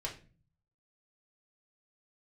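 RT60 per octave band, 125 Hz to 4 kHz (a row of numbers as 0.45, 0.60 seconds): 0.90, 0.65, 0.40, 0.30, 0.35, 0.30 seconds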